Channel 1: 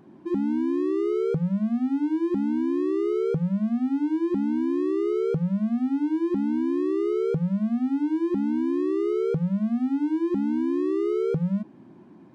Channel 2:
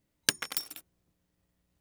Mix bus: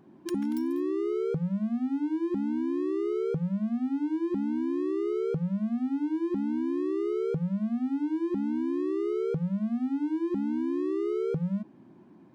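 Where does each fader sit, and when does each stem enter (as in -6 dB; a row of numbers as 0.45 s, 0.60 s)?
-4.5 dB, -19.0 dB; 0.00 s, 0.00 s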